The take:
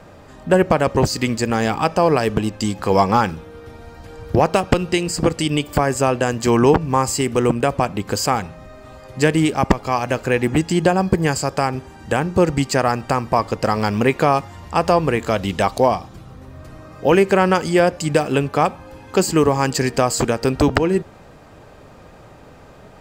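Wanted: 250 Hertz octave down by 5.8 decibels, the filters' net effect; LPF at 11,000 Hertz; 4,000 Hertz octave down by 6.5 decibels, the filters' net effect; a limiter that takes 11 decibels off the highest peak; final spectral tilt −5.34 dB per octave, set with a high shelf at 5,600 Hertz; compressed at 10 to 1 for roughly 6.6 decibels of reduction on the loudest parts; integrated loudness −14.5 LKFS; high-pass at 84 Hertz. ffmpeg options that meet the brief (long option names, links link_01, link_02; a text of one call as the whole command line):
ffmpeg -i in.wav -af "highpass=84,lowpass=11000,equalizer=frequency=250:width_type=o:gain=-8.5,equalizer=frequency=4000:width_type=o:gain=-6,highshelf=frequency=5600:gain=-7.5,acompressor=threshold=-18dB:ratio=10,volume=13.5dB,alimiter=limit=-2dB:level=0:latency=1" out.wav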